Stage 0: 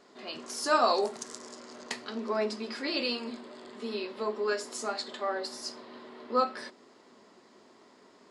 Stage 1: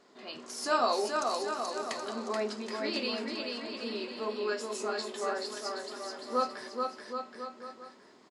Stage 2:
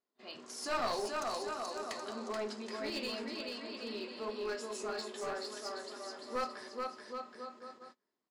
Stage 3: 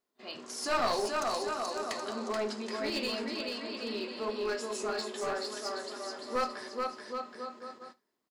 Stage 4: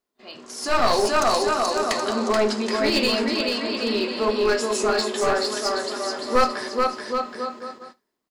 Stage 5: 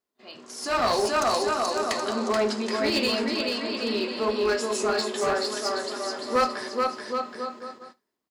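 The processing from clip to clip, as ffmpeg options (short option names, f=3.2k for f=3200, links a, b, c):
-af "aecho=1:1:430|774|1049|1269|1445:0.631|0.398|0.251|0.158|0.1,volume=-3dB"
-af "bandreject=f=78.88:t=h:w=4,bandreject=f=157.76:t=h:w=4,bandreject=f=236.64:t=h:w=4,bandreject=f=315.52:t=h:w=4,bandreject=f=394.4:t=h:w=4,bandreject=f=473.28:t=h:w=4,bandreject=f=552.16:t=h:w=4,bandreject=f=631.04:t=h:w=4,bandreject=f=709.92:t=h:w=4,bandreject=f=788.8:t=h:w=4,bandreject=f=867.68:t=h:w=4,bandreject=f=946.56:t=h:w=4,bandreject=f=1.02544k:t=h:w=4,bandreject=f=1.10432k:t=h:w=4,bandreject=f=1.1832k:t=h:w=4,bandreject=f=1.26208k:t=h:w=4,bandreject=f=1.34096k:t=h:w=4,bandreject=f=1.41984k:t=h:w=4,bandreject=f=1.49872k:t=h:w=4,bandreject=f=1.5776k:t=h:w=4,bandreject=f=1.65648k:t=h:w=4,bandreject=f=1.73536k:t=h:w=4,bandreject=f=1.81424k:t=h:w=4,bandreject=f=1.89312k:t=h:w=4,bandreject=f=1.972k:t=h:w=4,bandreject=f=2.05088k:t=h:w=4,bandreject=f=2.12976k:t=h:w=4,bandreject=f=2.20864k:t=h:w=4,bandreject=f=2.28752k:t=h:w=4,agate=range=-25dB:threshold=-49dB:ratio=16:detection=peak,aeval=exprs='clip(val(0),-1,0.0316)':c=same,volume=-4.5dB"
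-af "aecho=1:1:75:0.075,volume=5dB"
-af "lowshelf=f=69:g=9,dynaudnorm=f=120:g=13:m=11dB,volume=1.5dB"
-af "highpass=45,volume=-3.5dB"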